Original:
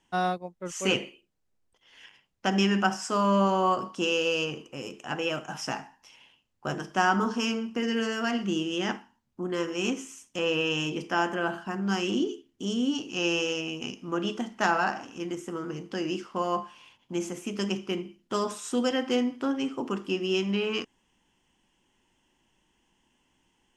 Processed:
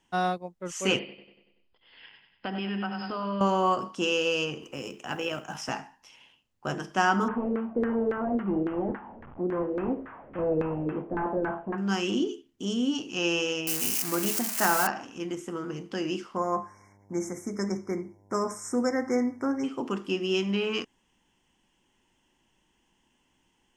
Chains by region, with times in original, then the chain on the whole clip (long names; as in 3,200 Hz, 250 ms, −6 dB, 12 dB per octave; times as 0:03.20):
0:00.99–0:03.41: linear-phase brick-wall low-pass 5,200 Hz + repeating echo 95 ms, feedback 54%, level −8.5 dB + downward compressor 3 to 1, threshold −31 dBFS
0:04.62–0:05.69: amplitude modulation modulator 59 Hz, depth 25% + noise that follows the level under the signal 33 dB + multiband upward and downward compressor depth 40%
0:07.28–0:11.78: linear delta modulator 16 kbit/s, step −41 dBFS + auto-filter low-pass saw down 3.6 Hz 420–1,600 Hz
0:13.67–0:14.87: spike at every zero crossing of −16 dBFS + parametric band 3,500 Hz −10.5 dB 0.54 octaves
0:16.35–0:19.63: hum with harmonics 100 Hz, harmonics 10, −60 dBFS −5 dB per octave + linear-phase brick-wall band-stop 2,300–5,100 Hz
whole clip: no processing